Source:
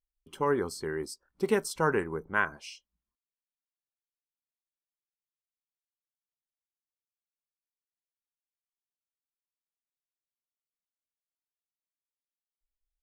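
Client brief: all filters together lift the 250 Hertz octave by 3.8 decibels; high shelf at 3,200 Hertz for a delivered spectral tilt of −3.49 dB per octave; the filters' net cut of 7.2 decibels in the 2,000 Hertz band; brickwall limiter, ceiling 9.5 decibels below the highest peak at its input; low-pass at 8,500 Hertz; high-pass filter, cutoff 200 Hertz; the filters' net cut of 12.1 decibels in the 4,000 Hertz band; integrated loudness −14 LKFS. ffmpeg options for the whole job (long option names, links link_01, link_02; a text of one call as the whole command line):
ffmpeg -i in.wav -af "highpass=200,lowpass=8500,equalizer=frequency=250:width_type=o:gain=7.5,equalizer=frequency=2000:width_type=o:gain=-7.5,highshelf=frequency=3200:gain=-6.5,equalizer=frequency=4000:width_type=o:gain=-9,volume=21dB,alimiter=limit=-1.5dB:level=0:latency=1" out.wav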